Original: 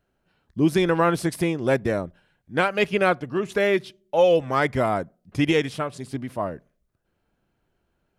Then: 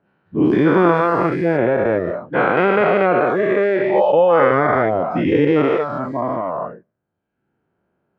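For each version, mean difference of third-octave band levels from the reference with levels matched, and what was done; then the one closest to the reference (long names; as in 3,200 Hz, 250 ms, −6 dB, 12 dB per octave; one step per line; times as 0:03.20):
9.5 dB: every bin's largest magnitude spread in time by 480 ms
low-pass filter 1,500 Hz 12 dB per octave
reverb reduction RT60 0.93 s
high-pass filter 130 Hz 12 dB per octave
level +2 dB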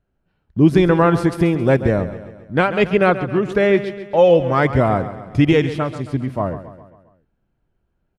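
5.0 dB: low-pass filter 2,700 Hz 6 dB per octave
noise gate −53 dBFS, range −8 dB
low-shelf EQ 160 Hz +10 dB
repeating echo 135 ms, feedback 53%, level −13 dB
level +4.5 dB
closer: second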